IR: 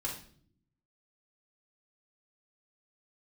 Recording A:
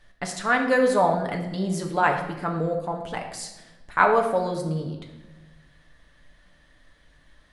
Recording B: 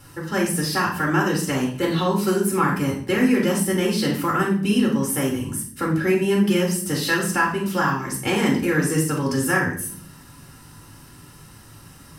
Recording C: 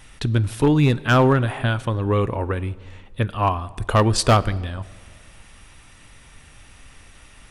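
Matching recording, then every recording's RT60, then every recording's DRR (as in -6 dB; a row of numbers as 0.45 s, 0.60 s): B; no single decay rate, 0.55 s, 1.9 s; 1.5 dB, -3.5 dB, 16.5 dB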